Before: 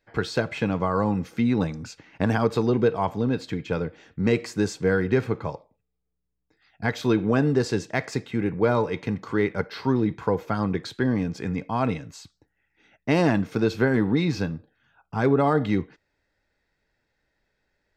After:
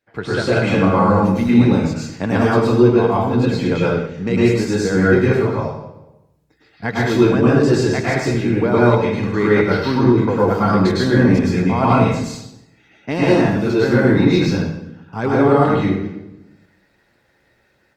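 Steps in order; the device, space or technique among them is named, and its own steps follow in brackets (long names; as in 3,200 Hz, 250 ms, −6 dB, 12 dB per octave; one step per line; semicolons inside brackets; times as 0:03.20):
far-field microphone of a smart speaker (convolution reverb RT60 0.80 s, pre-delay 99 ms, DRR −7.5 dB; high-pass filter 88 Hz 12 dB per octave; automatic gain control gain up to 10.5 dB; level −1 dB; Opus 32 kbit/s 48,000 Hz)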